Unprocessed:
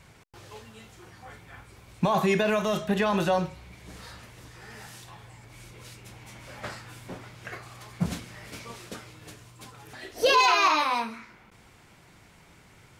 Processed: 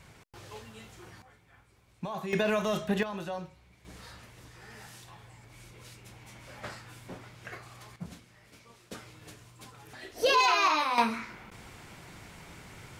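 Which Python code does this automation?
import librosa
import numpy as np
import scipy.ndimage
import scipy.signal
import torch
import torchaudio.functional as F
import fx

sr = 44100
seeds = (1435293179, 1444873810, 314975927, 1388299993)

y = fx.gain(x, sr, db=fx.steps((0.0, -0.5), (1.22, -13.0), (2.33, -3.0), (3.03, -12.5), (3.85, -4.0), (7.96, -14.0), (8.91, -3.5), (10.98, 6.0)))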